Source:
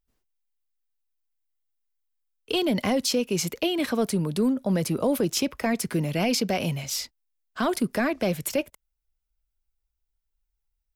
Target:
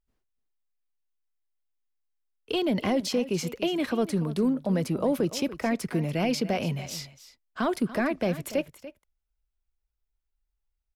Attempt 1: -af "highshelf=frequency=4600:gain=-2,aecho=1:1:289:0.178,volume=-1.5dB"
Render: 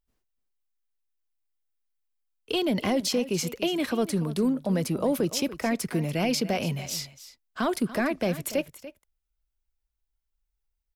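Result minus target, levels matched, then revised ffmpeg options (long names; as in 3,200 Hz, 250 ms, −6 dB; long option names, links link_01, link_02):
8,000 Hz band +5.0 dB
-af "highshelf=frequency=4600:gain=-9.5,aecho=1:1:289:0.178,volume=-1.5dB"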